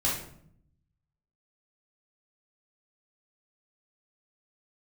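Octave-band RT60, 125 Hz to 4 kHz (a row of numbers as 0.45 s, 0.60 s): 1.3 s, 1.0 s, 0.70 s, 0.60 s, 0.50 s, 0.45 s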